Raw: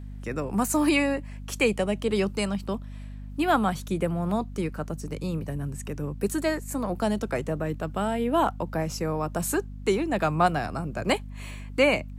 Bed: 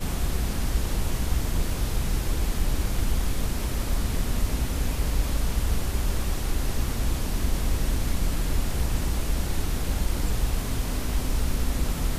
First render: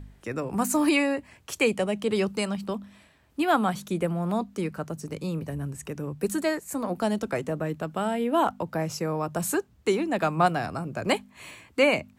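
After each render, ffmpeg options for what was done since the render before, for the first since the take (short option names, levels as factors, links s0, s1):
-af "bandreject=f=50:t=h:w=4,bandreject=f=100:t=h:w=4,bandreject=f=150:t=h:w=4,bandreject=f=200:t=h:w=4,bandreject=f=250:t=h:w=4"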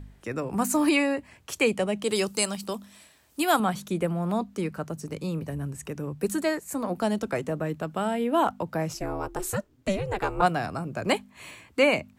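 -filter_complex "[0:a]asettb=1/sr,asplit=3[s0][s1][s2];[s0]atrim=end=2.044[s3];[s1]atrim=start=2.04:end=3.6,asetpts=PTS-STARTPTS,afade=t=in:d=0.004:c=qsin,afade=t=out:st=1.556:d=0.004:c=qsin,bass=f=250:g=-6,treble=f=4000:g=13[s4];[s2]atrim=start=3.596[s5];[s3][s4]acrossfade=d=0.004:c1=hsin:c2=qsin[s6];[s6][s5]acrossfade=d=0.004:c1=qsin:c2=hsin,asplit=3[s7][s8][s9];[s7]afade=t=out:st=8.93:d=0.02[s10];[s8]aeval=exprs='val(0)*sin(2*PI*190*n/s)':c=same,afade=t=in:st=8.93:d=0.02,afade=t=out:st=10.41:d=0.02[s11];[s9]afade=t=in:st=10.41:d=0.02[s12];[s10][s11][s12]amix=inputs=3:normalize=0"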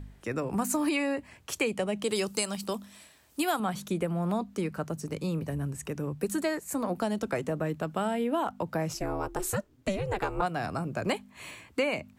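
-af "acompressor=threshold=0.0562:ratio=6"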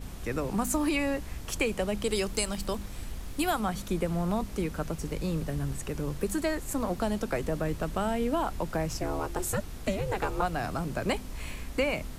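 -filter_complex "[1:a]volume=0.2[s0];[0:a][s0]amix=inputs=2:normalize=0"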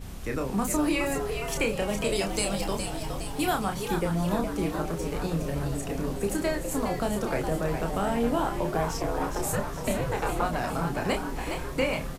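-filter_complex "[0:a]asplit=2[s0][s1];[s1]adelay=30,volume=0.562[s2];[s0][s2]amix=inputs=2:normalize=0,asplit=8[s3][s4][s5][s6][s7][s8][s9][s10];[s4]adelay=414,afreqshift=120,volume=0.447[s11];[s5]adelay=828,afreqshift=240,volume=0.245[s12];[s6]adelay=1242,afreqshift=360,volume=0.135[s13];[s7]adelay=1656,afreqshift=480,volume=0.0741[s14];[s8]adelay=2070,afreqshift=600,volume=0.0407[s15];[s9]adelay=2484,afreqshift=720,volume=0.0224[s16];[s10]adelay=2898,afreqshift=840,volume=0.0123[s17];[s3][s11][s12][s13][s14][s15][s16][s17]amix=inputs=8:normalize=0"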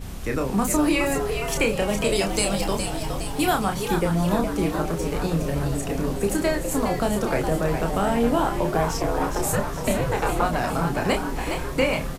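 -af "volume=1.78"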